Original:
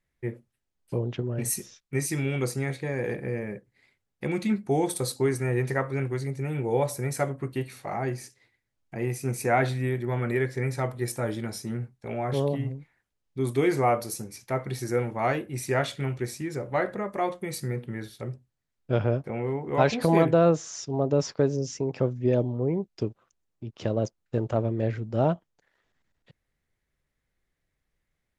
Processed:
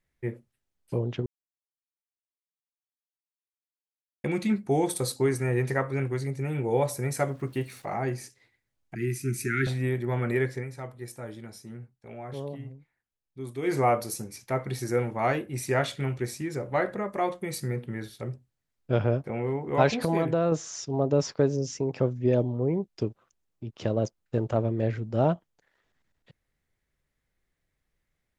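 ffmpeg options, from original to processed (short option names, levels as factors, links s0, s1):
-filter_complex "[0:a]asettb=1/sr,asplit=3[s0][s1][s2];[s0]atrim=end=7.284[s3];[s1]atrim=start=7.28:end=7.85,asetpts=PTS-STARTPTS,afade=t=in:d=0.004:c=qsin,afade=t=out:st=0.566:d=0.004:c=qsin,aeval=exprs='val(0)*gte(abs(val(0)),0.00211)':c=same[s4];[s2]atrim=start=7.846[s5];[s3][s4]acrossfade=d=0.004:c1=hsin:c2=qsin[s6];[s6][s5]acrossfade=d=0.004:c1=qsin:c2=hsin,asettb=1/sr,asplit=3[s7][s8][s9];[s7]atrim=end=8.954[s10];[s8]atrim=start=8.95:end=9.67,asetpts=PTS-STARTPTS,afade=t=in:d=0.004:c=qsin,afade=t=out:st=0.716:d=0.004:c=qsin,asuperstop=centerf=740:order=20:qfactor=0.81[s11];[s9]atrim=start=9.666[s12];[s10][s11]acrossfade=d=0.004:c1=hsin:c2=qsin[s13];[s13][s12]acrossfade=d=0.004:c1=qsin:c2=hsin,asettb=1/sr,asplit=3[s14][s15][s16];[s14]atrim=end=19.974[s17];[s15]atrim=start=19.97:end=20.52,asetpts=PTS-STARTPTS,afade=t=in:d=0.004:c=qsin,afade=t=out:st=0.546:d=0.004:c=qsin,acompressor=threshold=0.0631:ratio=2:attack=3.2:release=140:knee=1:detection=peak[s18];[s16]atrim=start=20.516[s19];[s17][s18]acrossfade=d=0.004:c1=hsin:c2=qsin[s20];[s20][s19]acrossfade=d=0.004:c1=qsin:c2=hsin,asplit=5[s21][s22][s23][s24][s25];[s21]atrim=end=1.26,asetpts=PTS-STARTPTS,afade=t=out:st=1.256:d=0.004:c=hsin[s26];[s22]atrim=start=1.26:end=4.24,asetpts=PTS-STARTPTS,volume=0[s27];[s23]atrim=start=4.24:end=10.65,asetpts=PTS-STARTPTS,afade=t=in:d=0.004:c=hsin,afade=t=out:st=6.23:d=0.18:c=qsin:silence=0.316228[s28];[s24]atrim=start=10.65:end=13.62,asetpts=PTS-STARTPTS,volume=0.316[s29];[s25]atrim=start=13.62,asetpts=PTS-STARTPTS,afade=t=in:d=0.18:c=qsin:silence=0.316228[s30];[s26][s27][s28][s29][s30]concat=n=5:v=0:a=1"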